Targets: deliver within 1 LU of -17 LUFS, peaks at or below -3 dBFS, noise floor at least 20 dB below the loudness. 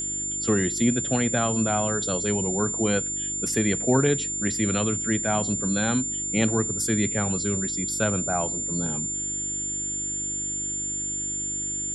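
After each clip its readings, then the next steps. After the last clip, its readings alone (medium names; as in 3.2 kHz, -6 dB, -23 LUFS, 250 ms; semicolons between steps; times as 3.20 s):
hum 50 Hz; highest harmonic 350 Hz; hum level -41 dBFS; steady tone 7.2 kHz; tone level -27 dBFS; loudness -24.0 LUFS; peak level -8.0 dBFS; loudness target -17.0 LUFS
-> de-hum 50 Hz, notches 7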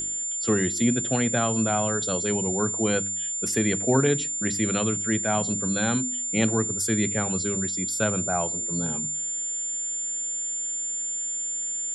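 hum not found; steady tone 7.2 kHz; tone level -27 dBFS
-> band-stop 7.2 kHz, Q 30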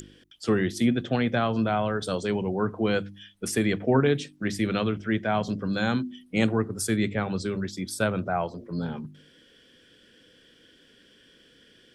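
steady tone not found; loudness -27.0 LUFS; peak level -8.5 dBFS; loudness target -17.0 LUFS
-> trim +10 dB; peak limiter -3 dBFS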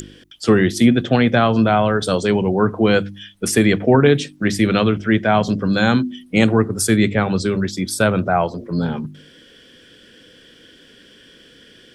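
loudness -17.0 LUFS; peak level -3.0 dBFS; noise floor -48 dBFS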